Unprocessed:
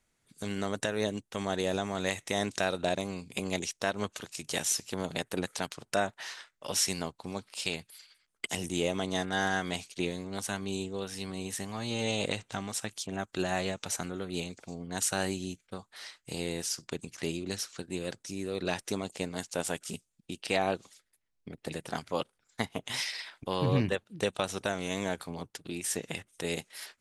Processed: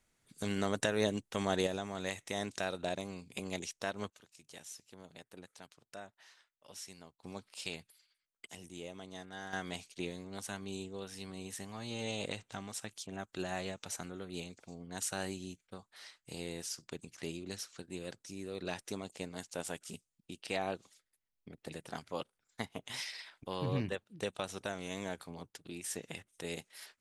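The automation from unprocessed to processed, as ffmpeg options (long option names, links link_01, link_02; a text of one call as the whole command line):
ffmpeg -i in.wav -af "asetnsamples=nb_out_samples=441:pad=0,asendcmd='1.67 volume volume -7dB;4.1 volume volume -19.5dB;7.23 volume volume -8dB;7.92 volume volume -16dB;9.53 volume volume -7.5dB',volume=-0.5dB" out.wav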